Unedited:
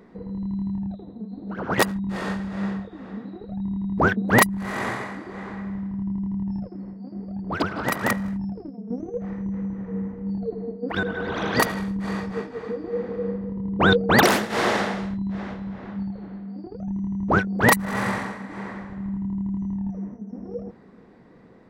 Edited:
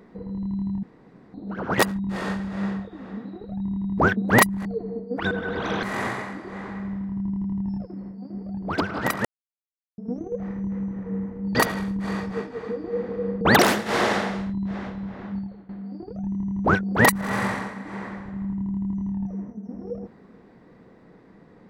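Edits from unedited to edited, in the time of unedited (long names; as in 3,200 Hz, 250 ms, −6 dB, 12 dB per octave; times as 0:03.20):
0:00.83–0:01.34: fill with room tone
0:08.07–0:08.80: silence
0:10.37–0:11.55: move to 0:04.65
0:13.41–0:14.05: remove
0:15.98–0:16.33: fade out, to −15.5 dB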